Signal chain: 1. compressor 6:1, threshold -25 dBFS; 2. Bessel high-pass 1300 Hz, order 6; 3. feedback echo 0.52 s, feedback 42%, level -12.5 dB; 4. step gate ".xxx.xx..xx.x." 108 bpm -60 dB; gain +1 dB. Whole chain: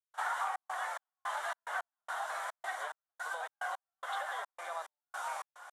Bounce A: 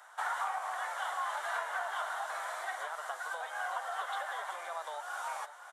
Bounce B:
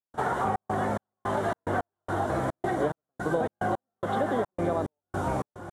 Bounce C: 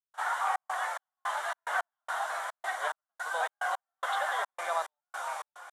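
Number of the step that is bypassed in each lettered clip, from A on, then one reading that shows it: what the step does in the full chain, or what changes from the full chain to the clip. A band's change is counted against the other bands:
4, crest factor change -2.0 dB; 2, 500 Hz band +17.0 dB; 1, mean gain reduction 5.0 dB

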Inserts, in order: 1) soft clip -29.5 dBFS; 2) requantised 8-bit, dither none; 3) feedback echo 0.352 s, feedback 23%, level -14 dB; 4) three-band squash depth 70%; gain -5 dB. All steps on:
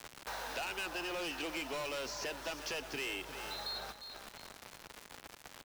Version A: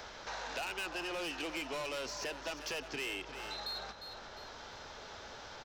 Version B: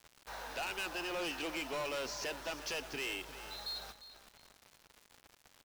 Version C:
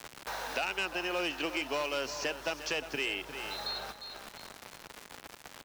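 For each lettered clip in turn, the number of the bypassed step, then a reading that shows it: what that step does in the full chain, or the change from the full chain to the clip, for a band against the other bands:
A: 2, distortion -16 dB; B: 4, crest factor change -5.0 dB; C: 1, distortion -8 dB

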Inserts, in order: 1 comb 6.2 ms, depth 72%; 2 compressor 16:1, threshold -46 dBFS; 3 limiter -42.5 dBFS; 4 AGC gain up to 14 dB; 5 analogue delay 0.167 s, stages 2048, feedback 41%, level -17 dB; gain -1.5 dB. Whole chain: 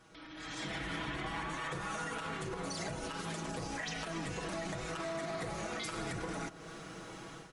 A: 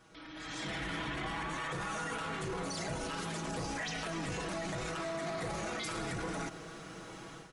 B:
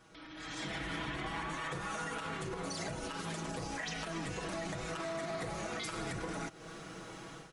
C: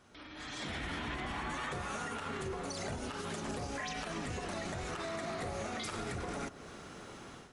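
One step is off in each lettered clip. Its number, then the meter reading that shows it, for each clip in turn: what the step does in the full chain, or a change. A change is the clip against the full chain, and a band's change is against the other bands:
2, mean gain reduction 12.0 dB; 5, echo-to-direct -18.0 dB to none; 1, momentary loudness spread change +2 LU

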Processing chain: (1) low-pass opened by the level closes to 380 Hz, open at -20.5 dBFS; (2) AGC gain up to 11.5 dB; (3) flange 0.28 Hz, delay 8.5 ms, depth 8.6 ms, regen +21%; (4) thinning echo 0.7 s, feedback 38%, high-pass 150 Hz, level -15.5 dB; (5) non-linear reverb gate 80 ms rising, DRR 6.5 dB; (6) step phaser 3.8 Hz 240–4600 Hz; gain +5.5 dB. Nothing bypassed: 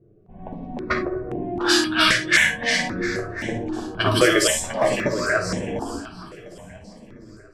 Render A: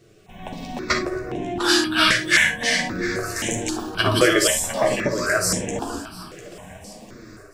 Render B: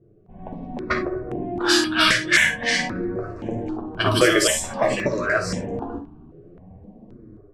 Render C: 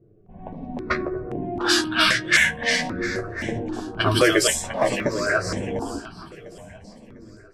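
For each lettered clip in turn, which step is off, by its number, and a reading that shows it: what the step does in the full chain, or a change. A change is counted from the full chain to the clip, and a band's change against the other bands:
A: 1, 8 kHz band +3.0 dB; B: 4, momentary loudness spread change -3 LU; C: 5, loudness change -1.0 LU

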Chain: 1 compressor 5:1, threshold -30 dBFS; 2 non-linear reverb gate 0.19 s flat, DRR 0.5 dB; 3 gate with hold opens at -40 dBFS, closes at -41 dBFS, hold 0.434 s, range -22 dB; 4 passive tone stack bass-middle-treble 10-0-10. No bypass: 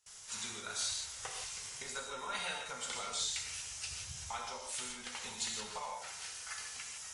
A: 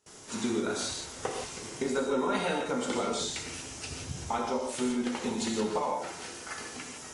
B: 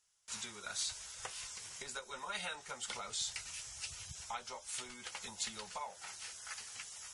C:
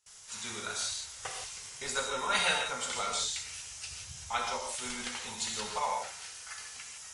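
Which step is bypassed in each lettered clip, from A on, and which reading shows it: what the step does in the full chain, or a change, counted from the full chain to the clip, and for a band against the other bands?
4, 250 Hz band +17.5 dB; 2, loudness change -3.0 LU; 1, mean gain reduction 3.5 dB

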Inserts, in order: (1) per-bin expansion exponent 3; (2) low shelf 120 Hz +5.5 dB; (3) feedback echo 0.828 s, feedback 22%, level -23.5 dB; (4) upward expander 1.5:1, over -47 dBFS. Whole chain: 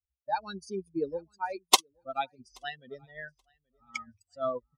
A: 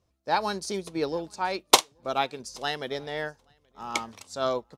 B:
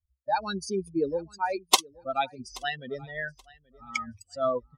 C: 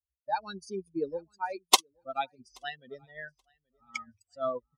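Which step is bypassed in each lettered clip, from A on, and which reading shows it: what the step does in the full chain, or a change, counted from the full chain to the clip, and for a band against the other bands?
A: 1, momentary loudness spread change -8 LU; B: 4, 8 kHz band -4.5 dB; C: 2, 125 Hz band -2.0 dB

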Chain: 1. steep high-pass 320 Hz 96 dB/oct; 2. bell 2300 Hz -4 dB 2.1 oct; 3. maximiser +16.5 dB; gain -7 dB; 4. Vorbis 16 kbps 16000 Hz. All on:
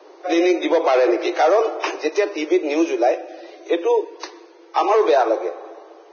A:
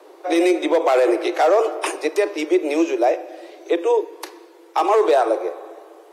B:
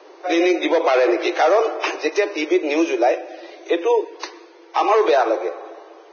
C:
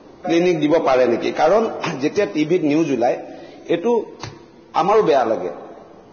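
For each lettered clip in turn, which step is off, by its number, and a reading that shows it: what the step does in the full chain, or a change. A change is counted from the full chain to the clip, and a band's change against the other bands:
4, crest factor change -2.0 dB; 2, 2 kHz band +3.0 dB; 1, 250 Hz band +3.0 dB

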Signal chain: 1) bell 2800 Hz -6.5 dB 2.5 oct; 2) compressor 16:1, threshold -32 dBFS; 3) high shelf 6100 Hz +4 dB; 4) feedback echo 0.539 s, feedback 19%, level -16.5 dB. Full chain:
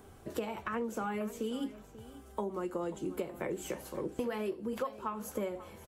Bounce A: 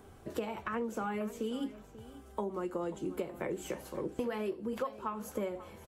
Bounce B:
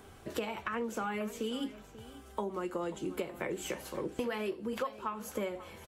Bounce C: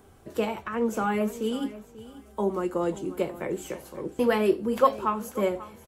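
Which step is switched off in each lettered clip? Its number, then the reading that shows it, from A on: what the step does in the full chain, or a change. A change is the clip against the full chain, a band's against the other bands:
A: 3, 8 kHz band -2.5 dB; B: 1, 4 kHz band +5.0 dB; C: 2, mean gain reduction 6.5 dB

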